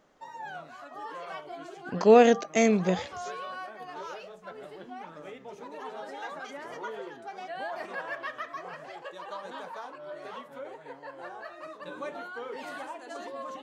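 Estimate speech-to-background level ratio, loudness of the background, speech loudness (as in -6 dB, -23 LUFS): 18.5 dB, -40.5 LUFS, -22.0 LUFS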